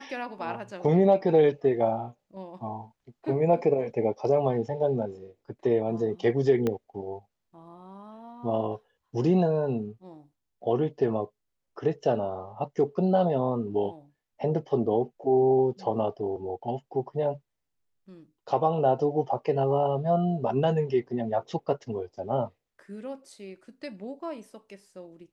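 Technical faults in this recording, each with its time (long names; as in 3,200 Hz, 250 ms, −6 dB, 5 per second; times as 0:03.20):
0:06.67: click −15 dBFS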